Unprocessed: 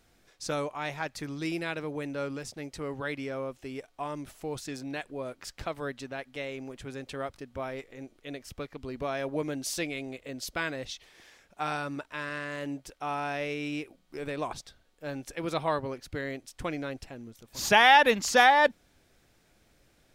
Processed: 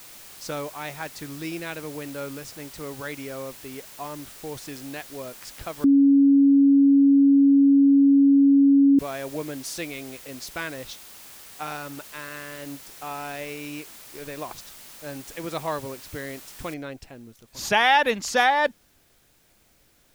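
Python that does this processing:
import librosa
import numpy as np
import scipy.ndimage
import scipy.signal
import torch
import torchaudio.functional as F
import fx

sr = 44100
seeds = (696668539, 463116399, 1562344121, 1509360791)

y = fx.law_mismatch(x, sr, coded='A', at=(10.93, 14.58))
y = fx.noise_floor_step(y, sr, seeds[0], at_s=16.74, before_db=-45, after_db=-64, tilt_db=0.0)
y = fx.edit(y, sr, fx.bleep(start_s=5.84, length_s=3.15, hz=278.0, db=-12.5), tone=tone)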